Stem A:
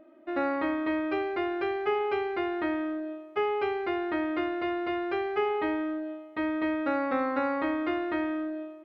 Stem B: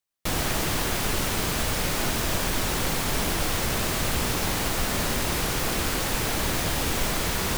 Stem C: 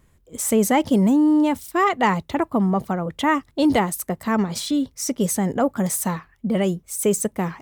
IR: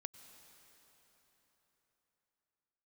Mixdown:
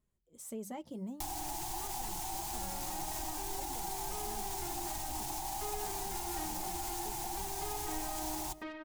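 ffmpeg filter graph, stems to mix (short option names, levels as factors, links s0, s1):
-filter_complex "[0:a]asoftclip=type=tanh:threshold=0.0282,adelay=2250,volume=0.841[s0];[1:a]firequalizer=gain_entry='entry(100,0);entry(210,-15);entry(340,2);entry(490,-27);entry(780,15);entry(1200,-10);entry(6600,5)':delay=0.05:min_phase=1,alimiter=limit=0.1:level=0:latency=1:release=95,adelay=950,volume=1.26,asplit=2[s1][s2];[s2]volume=0.168[s3];[2:a]equalizer=f=1800:t=o:w=1.3:g=-6.5,volume=0.119,asplit=3[s4][s5][s6];[s4]atrim=end=5.24,asetpts=PTS-STARTPTS,afade=t=out:st=5.236:d=0.004:c=hsin[s7];[s5]atrim=start=5.24:end=5.84,asetpts=PTS-STARTPTS,volume=0[s8];[s6]atrim=start=5.84,asetpts=PTS-STARTPTS,afade=t=in:d=0.004:c=hsin[s9];[s7][s8][s9]concat=n=3:v=0:a=1,asplit=2[s10][s11];[s11]apad=whole_len=489095[s12];[s0][s12]sidechaincompress=threshold=0.00447:ratio=8:attack=16:release=1090[s13];[s1][s10]amix=inputs=2:normalize=0,bandreject=f=50:t=h:w=6,bandreject=f=100:t=h:w=6,bandreject=f=150:t=h:w=6,bandreject=f=200:t=h:w=6,acompressor=threshold=0.02:ratio=10,volume=1[s14];[3:a]atrim=start_sample=2205[s15];[s3][s15]afir=irnorm=-1:irlink=0[s16];[s13][s14][s16]amix=inputs=3:normalize=0,flanger=delay=4.7:depth=1.2:regen=-43:speed=1.6:shape=triangular"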